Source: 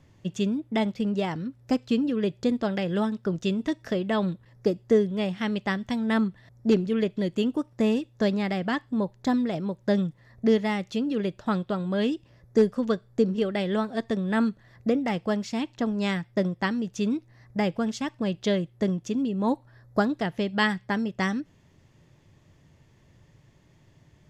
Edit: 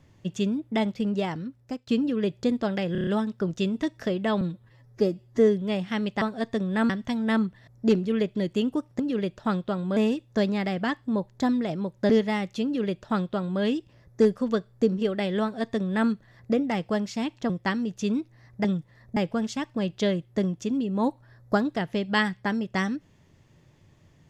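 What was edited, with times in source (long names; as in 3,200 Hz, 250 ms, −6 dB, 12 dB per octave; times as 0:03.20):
0:01.11–0:01.87: fade out equal-power, to −20 dB
0:02.92: stutter 0.03 s, 6 plays
0:04.26–0:04.97: time-stretch 1.5×
0:09.94–0:10.46: move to 0:17.61
0:11.01–0:11.98: duplicate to 0:07.81
0:13.78–0:14.46: duplicate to 0:05.71
0:15.86–0:16.46: remove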